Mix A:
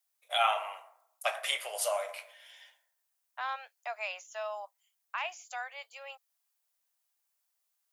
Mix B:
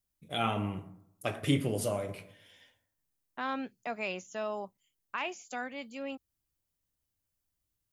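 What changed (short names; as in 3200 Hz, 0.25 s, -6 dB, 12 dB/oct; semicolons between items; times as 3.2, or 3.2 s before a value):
first voice -5.5 dB; master: remove steep high-pass 620 Hz 48 dB/oct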